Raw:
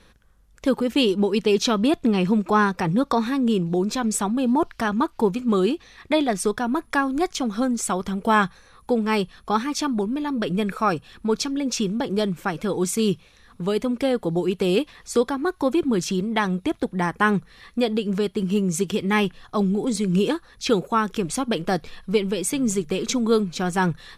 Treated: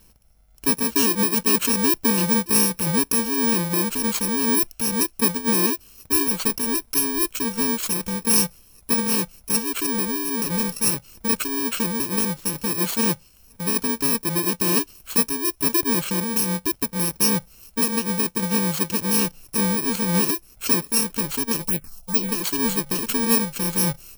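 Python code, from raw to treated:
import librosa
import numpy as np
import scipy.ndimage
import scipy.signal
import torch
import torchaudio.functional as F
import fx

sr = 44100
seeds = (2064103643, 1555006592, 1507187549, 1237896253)

y = fx.bit_reversed(x, sr, seeds[0], block=64)
y = fx.env_phaser(y, sr, low_hz=220.0, high_hz=1700.0, full_db=-15.5, at=(21.62, 22.29))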